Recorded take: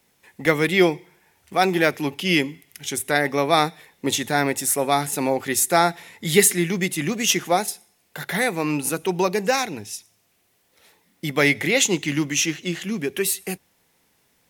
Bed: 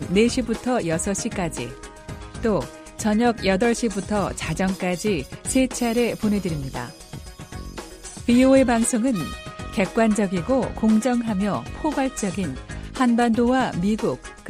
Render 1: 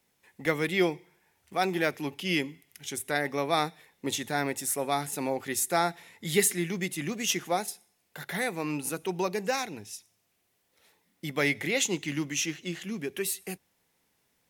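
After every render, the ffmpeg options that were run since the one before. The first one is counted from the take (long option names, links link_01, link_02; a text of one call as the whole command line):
ffmpeg -i in.wav -af "volume=-8.5dB" out.wav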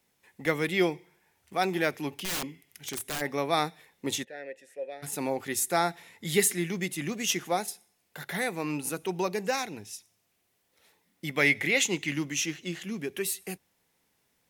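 ffmpeg -i in.wav -filter_complex "[0:a]asplit=3[link_01][link_02][link_03];[link_01]afade=type=out:start_time=2.14:duration=0.02[link_04];[link_02]aeval=exprs='(mod(21.1*val(0)+1,2)-1)/21.1':channel_layout=same,afade=type=in:start_time=2.14:duration=0.02,afade=type=out:start_time=3.2:duration=0.02[link_05];[link_03]afade=type=in:start_time=3.2:duration=0.02[link_06];[link_04][link_05][link_06]amix=inputs=3:normalize=0,asplit=3[link_07][link_08][link_09];[link_07]afade=type=out:start_time=4.23:duration=0.02[link_10];[link_08]asplit=3[link_11][link_12][link_13];[link_11]bandpass=frequency=530:width_type=q:width=8,volume=0dB[link_14];[link_12]bandpass=frequency=1840:width_type=q:width=8,volume=-6dB[link_15];[link_13]bandpass=frequency=2480:width_type=q:width=8,volume=-9dB[link_16];[link_14][link_15][link_16]amix=inputs=3:normalize=0,afade=type=in:start_time=4.23:duration=0.02,afade=type=out:start_time=5.02:duration=0.02[link_17];[link_09]afade=type=in:start_time=5.02:duration=0.02[link_18];[link_10][link_17][link_18]amix=inputs=3:normalize=0,asettb=1/sr,asplit=3[link_19][link_20][link_21];[link_19]atrim=end=11.274[link_22];[link_20]atrim=start=11.27:end=12.14,asetpts=PTS-STARTPTS,afade=type=in:duration=0.004:curve=qsin,afade=type=out:start_time=0.866:duration=0.004:curve=qsin,equalizer=frequency=2200:width_type=o:width=0.82:gain=5.5[link_23];[link_21]atrim=start=12.136[link_24];[link_22][link_23]acrossfade=duration=0.004:curve1=hsin:curve2=qsin[link_25];[link_25][link_24]acrossfade=duration=0.004:curve1=qsin:curve2=hsin" out.wav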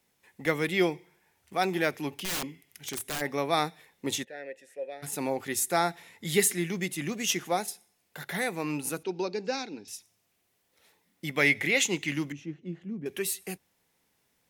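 ffmpeg -i in.wav -filter_complex "[0:a]asettb=1/sr,asplit=3[link_01][link_02][link_03];[link_01]atrim=end=9.034[link_04];[link_02]atrim=start=9.03:end=9.88,asetpts=PTS-STARTPTS,afade=type=in:duration=0.004:curve=qsin,afade=type=out:start_time=0.846:duration=0.004:curve=qsin,highpass=240,equalizer=frequency=270:width_type=q:width=4:gain=6,equalizer=frequency=670:width_type=q:width=4:gain=-8,equalizer=frequency=1100:width_type=q:width=4:gain=-9,equalizer=frequency=1900:width_type=q:width=4:gain=-10,equalizer=frequency=3100:width_type=q:width=4:gain=-7,equalizer=frequency=4600:width_type=q:width=4:gain=6,lowpass=frequency=5200:width=0.5412,lowpass=frequency=5200:width=1.3066[link_05];[link_03]atrim=start=9.876[link_06];[link_04][link_05]acrossfade=duration=0.004:curve1=hsin:curve2=qsin[link_07];[link_07][link_06]acrossfade=duration=0.004:curve1=qsin:curve2=hsin,asettb=1/sr,asplit=3[link_08][link_09][link_10];[link_08]atrim=end=12.324[link_11];[link_09]atrim=start=12.32:end=13.06,asetpts=PTS-STARTPTS,afade=type=in:duration=0.004:curve=qsin,afade=type=out:start_time=0.736:duration=0.004:curve=qsin,bandpass=frequency=160:width_type=q:width=0.64[link_12];[link_10]atrim=start=13.056[link_13];[link_11][link_12]acrossfade=duration=0.004:curve1=hsin:curve2=qsin[link_14];[link_14][link_13]acrossfade=duration=0.004:curve1=qsin:curve2=hsin" out.wav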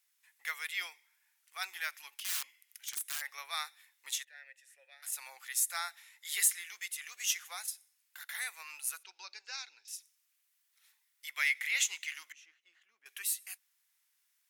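ffmpeg -i in.wav -af "highpass=frequency=1300:width=0.5412,highpass=frequency=1300:width=1.3066,equalizer=frequency=2100:width_type=o:width=2.9:gain=-6" out.wav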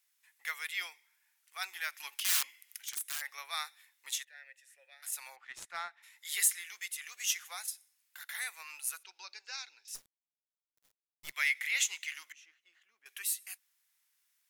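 ffmpeg -i in.wav -filter_complex "[0:a]asplit=3[link_01][link_02][link_03];[link_01]afade=type=out:start_time=5.35:duration=0.02[link_04];[link_02]adynamicsmooth=sensitivity=2.5:basefreq=2000,afade=type=in:start_time=5.35:duration=0.02,afade=type=out:start_time=6.02:duration=0.02[link_05];[link_03]afade=type=in:start_time=6.02:duration=0.02[link_06];[link_04][link_05][link_06]amix=inputs=3:normalize=0,asplit=3[link_07][link_08][link_09];[link_07]afade=type=out:start_time=9.94:duration=0.02[link_10];[link_08]acrusher=bits=7:dc=4:mix=0:aa=0.000001,afade=type=in:start_time=9.94:duration=0.02,afade=type=out:start_time=11.32:duration=0.02[link_11];[link_09]afade=type=in:start_time=11.32:duration=0.02[link_12];[link_10][link_11][link_12]amix=inputs=3:normalize=0,asplit=3[link_13][link_14][link_15];[link_13]atrim=end=2.002[link_16];[link_14]atrim=start=1.998:end=2.822,asetpts=PTS-STARTPTS,volume=6.5dB[link_17];[link_15]atrim=start=2.818[link_18];[link_16][link_17]acrossfade=duration=0.004:curve1=hsin:curve2=hsin[link_19];[link_19][link_18]acrossfade=duration=0.004:curve1=hsin:curve2=hsin" out.wav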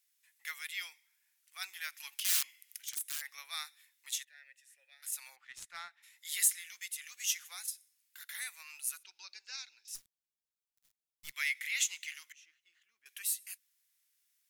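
ffmpeg -i in.wav -af "equalizer=frequency=600:width_type=o:width=2.7:gain=-11.5" out.wav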